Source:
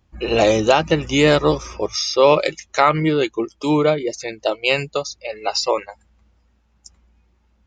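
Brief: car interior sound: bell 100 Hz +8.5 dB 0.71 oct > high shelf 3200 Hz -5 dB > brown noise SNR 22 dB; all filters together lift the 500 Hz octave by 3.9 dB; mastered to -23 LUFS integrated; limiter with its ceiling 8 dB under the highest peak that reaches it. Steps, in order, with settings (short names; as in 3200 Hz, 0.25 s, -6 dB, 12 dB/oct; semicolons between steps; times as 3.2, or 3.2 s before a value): bell 500 Hz +4.5 dB; limiter -7 dBFS; bell 100 Hz +8.5 dB 0.71 oct; high shelf 3200 Hz -5 dB; brown noise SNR 22 dB; gain -4 dB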